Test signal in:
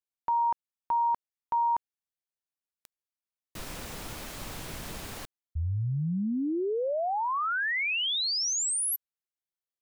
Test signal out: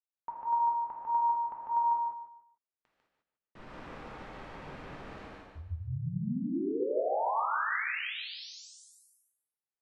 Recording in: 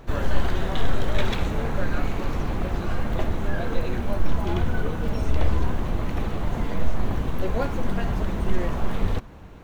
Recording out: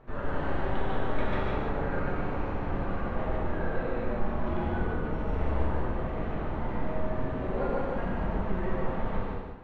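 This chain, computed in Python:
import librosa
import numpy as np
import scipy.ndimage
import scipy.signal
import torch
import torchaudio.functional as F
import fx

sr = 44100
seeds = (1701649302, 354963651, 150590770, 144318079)

y = scipy.signal.sosfilt(scipy.signal.butter(2, 1800.0, 'lowpass', fs=sr, output='sos'), x)
y = fx.low_shelf(y, sr, hz=240.0, db=-5.5)
y = fx.hum_notches(y, sr, base_hz=50, count=4)
y = fx.echo_feedback(y, sr, ms=148, feedback_pct=29, wet_db=-3)
y = fx.rev_gated(y, sr, seeds[0], gate_ms=230, shape='flat', drr_db=-4.0)
y = F.gain(torch.from_numpy(y), -8.0).numpy()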